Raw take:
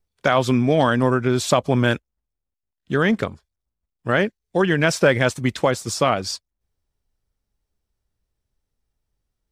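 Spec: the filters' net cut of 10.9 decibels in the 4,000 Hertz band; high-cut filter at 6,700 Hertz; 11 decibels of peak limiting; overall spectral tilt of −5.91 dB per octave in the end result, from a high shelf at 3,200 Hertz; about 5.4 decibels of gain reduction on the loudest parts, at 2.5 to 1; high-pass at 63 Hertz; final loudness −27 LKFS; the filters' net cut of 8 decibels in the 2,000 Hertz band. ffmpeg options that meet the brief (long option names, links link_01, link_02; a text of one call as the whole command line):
ffmpeg -i in.wav -af "highpass=63,lowpass=6700,equalizer=frequency=2000:width_type=o:gain=-8,highshelf=frequency=3200:gain=-7.5,equalizer=frequency=4000:width_type=o:gain=-5.5,acompressor=threshold=-20dB:ratio=2.5,volume=2.5dB,alimiter=limit=-15dB:level=0:latency=1" out.wav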